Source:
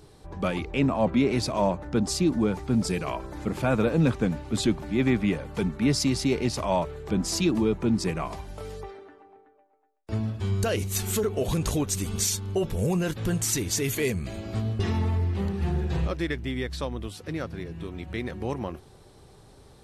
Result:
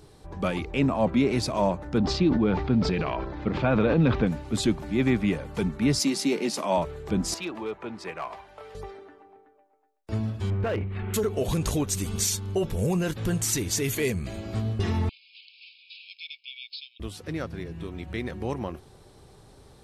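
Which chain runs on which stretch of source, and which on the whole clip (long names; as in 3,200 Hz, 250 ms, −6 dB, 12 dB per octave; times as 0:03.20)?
0:01.98–0:04.27: low-pass filter 4,100 Hz 24 dB per octave + transient designer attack +2 dB, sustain +9 dB
0:05.99–0:06.78: Butterworth high-pass 170 Hz 48 dB per octave + high-shelf EQ 8,800 Hz +5 dB + double-tracking delay 14 ms −13.5 dB
0:07.34–0:08.75: high-pass filter 49 Hz + three-way crossover with the lows and the highs turned down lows −19 dB, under 470 Hz, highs −16 dB, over 3,400 Hz + gain into a clipping stage and back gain 25.5 dB
0:10.50–0:11.14: inverse Chebyshev low-pass filter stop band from 5,800 Hz, stop band 50 dB + gain into a clipping stage and back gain 23 dB
0:15.09–0:17.00: linear-phase brick-wall band-pass 2,200–5,300 Hz + high-shelf EQ 3,700 Hz +4 dB
whole clip: no processing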